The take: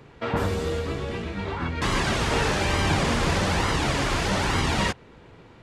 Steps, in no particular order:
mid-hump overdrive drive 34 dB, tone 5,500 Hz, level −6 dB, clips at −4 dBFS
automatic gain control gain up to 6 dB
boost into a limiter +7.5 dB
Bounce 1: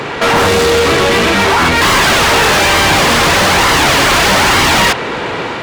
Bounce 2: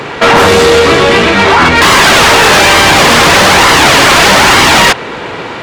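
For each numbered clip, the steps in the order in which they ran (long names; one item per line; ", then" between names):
boost into a limiter, then automatic gain control, then mid-hump overdrive
mid-hump overdrive, then boost into a limiter, then automatic gain control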